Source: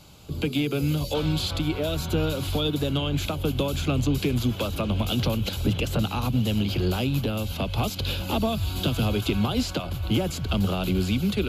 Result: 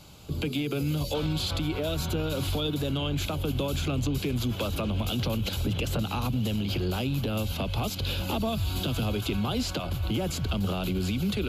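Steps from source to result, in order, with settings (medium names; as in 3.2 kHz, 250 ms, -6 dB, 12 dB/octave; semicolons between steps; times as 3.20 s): peak limiter -20.5 dBFS, peak gain reduction 7 dB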